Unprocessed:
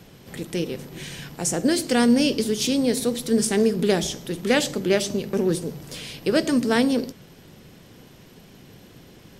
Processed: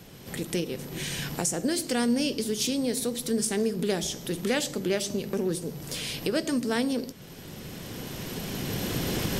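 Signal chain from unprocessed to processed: recorder AGC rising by 12 dB/s; high shelf 5900 Hz +5.5 dB; in parallel at +2.5 dB: compressor, threshold -33 dBFS, peak gain reduction 18 dB; on the sum: gain -9 dB

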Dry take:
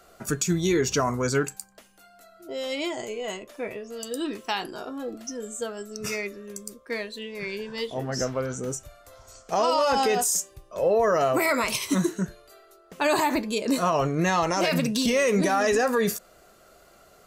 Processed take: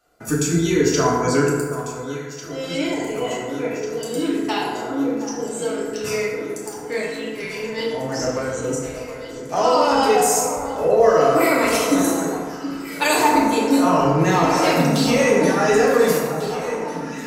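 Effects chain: gate -48 dBFS, range -13 dB; 11.98–13.15 tilt +3.5 dB/oct; on a send: echo with dull and thin repeats by turns 0.723 s, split 1500 Hz, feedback 83%, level -11 dB; on the sum: FDN reverb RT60 1.6 s, low-frequency decay 0.95×, high-frequency decay 0.45×, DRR -5.5 dB; gain -1 dB

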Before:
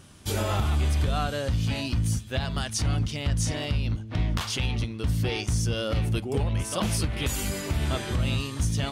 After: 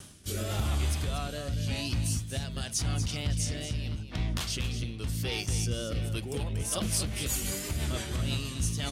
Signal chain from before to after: rotary speaker horn 0.9 Hz, later 6 Hz, at 6.22; reverse; upward compressor, threshold -28 dBFS; reverse; wow and flutter 53 cents; high shelf 4100 Hz +9.5 dB; on a send: echo 0.237 s -10 dB; on the sum: gain -4.5 dB

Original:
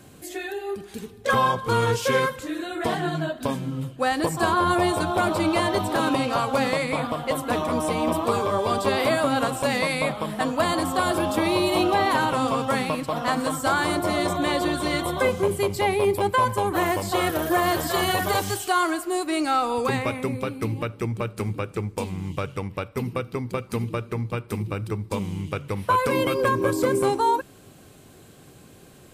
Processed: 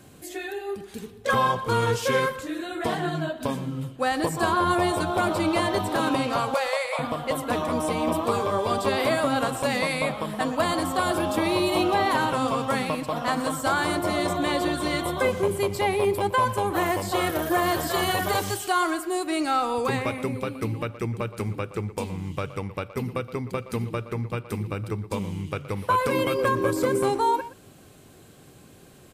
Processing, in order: 6.54–6.99 brick-wall FIR high-pass 470 Hz; speakerphone echo 0.12 s, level -14 dB; gain -1.5 dB

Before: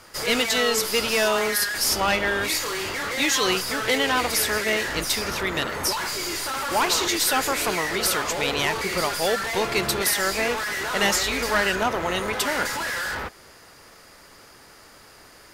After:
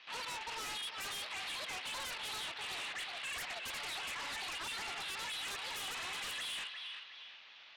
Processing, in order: CVSD 16 kbps; LPF 1600 Hz 24 dB/oct; differentiator; on a send: thinning echo 0.717 s, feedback 42%, high-pass 680 Hz, level -9 dB; on the sum: speed mistake 7.5 ips tape played at 15 ips; in parallel at -7.5 dB: sine folder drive 16 dB, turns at -30.5 dBFS; on the sum: gain -3.5 dB

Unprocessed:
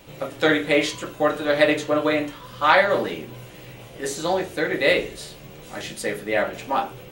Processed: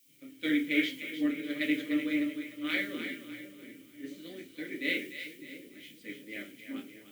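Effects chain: vowel filter i; split-band echo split 520 Hz, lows 0.676 s, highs 0.301 s, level -6 dB; added noise blue -57 dBFS; three-band expander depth 70%

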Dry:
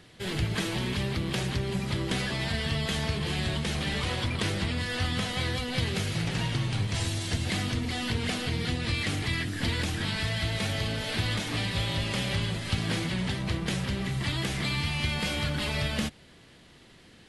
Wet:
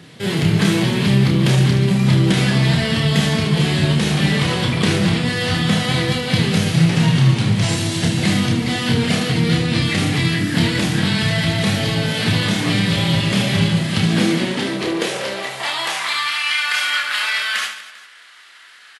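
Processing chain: tempo 0.91×; reverse bouncing-ball echo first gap 30 ms, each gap 1.5×, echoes 5; high-pass sweep 150 Hz -> 1400 Hz, 13.85–16.41; gain +8.5 dB

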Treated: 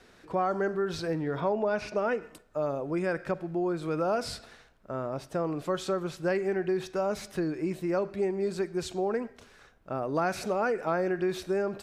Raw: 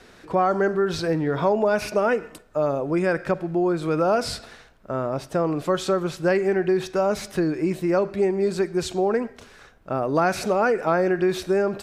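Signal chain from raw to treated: 1.4–2.2 LPF 4000 Hz -> 7100 Hz 12 dB/oct; gain -7.5 dB

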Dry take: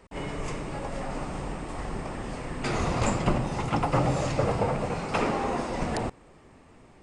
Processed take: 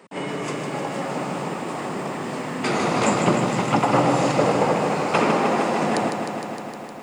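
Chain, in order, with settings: HPF 160 Hz 24 dB/oct; bell 5800 Hz -2 dB 0.35 oct; lo-fi delay 0.154 s, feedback 80%, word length 10-bit, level -7 dB; gain +6.5 dB

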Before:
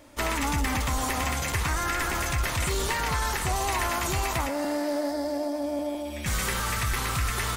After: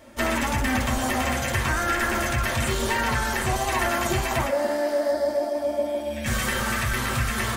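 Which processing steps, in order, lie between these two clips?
rattling part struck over -27 dBFS, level -31 dBFS; on a send: speaker cabinet 110–3400 Hz, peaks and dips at 130 Hz +8 dB, 220 Hz +7 dB, 360 Hz +5 dB, 560 Hz +9 dB, 1700 Hz +8 dB, 3100 Hz +9 dB + reverb RT60 0.35 s, pre-delay 4 ms, DRR -2 dB

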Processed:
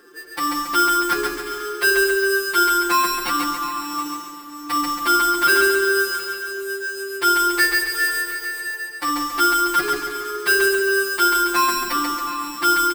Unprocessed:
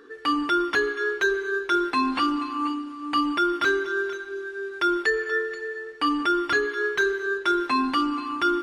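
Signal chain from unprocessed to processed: notches 50/100/150/200/250/300/350/400 Hz; comb 5.7 ms, depth 94%; sample-rate reducer 6600 Hz, jitter 0%; time stretch by phase-locked vocoder 1.5×; feedback echo 0.138 s, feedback 47%, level -3 dB

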